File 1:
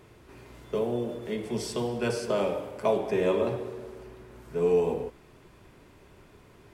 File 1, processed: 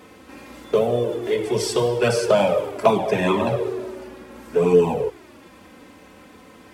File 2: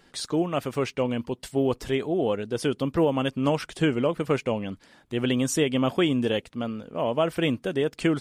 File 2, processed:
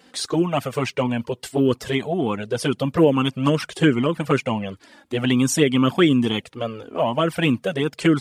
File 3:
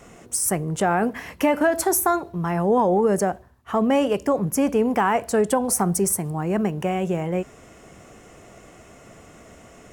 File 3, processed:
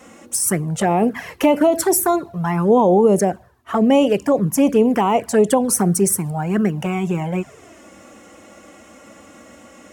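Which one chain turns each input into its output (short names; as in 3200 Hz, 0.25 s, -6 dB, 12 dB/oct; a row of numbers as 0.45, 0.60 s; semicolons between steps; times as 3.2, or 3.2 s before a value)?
HPF 110 Hz 12 dB/oct; envelope flanger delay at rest 4 ms, full sweep at -15.5 dBFS; normalise peaks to -3 dBFS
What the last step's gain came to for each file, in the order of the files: +13.0, +9.0, +6.5 dB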